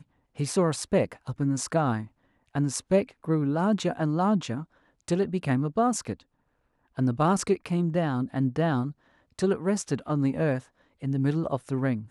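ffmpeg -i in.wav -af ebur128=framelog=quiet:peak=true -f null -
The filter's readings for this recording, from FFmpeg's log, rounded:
Integrated loudness:
  I:         -27.3 LUFS
  Threshold: -37.8 LUFS
Loudness range:
  LRA:         1.5 LU
  Threshold: -47.8 LUFS
  LRA low:   -28.6 LUFS
  LRA high:  -27.1 LUFS
True peak:
  Peak:      -11.3 dBFS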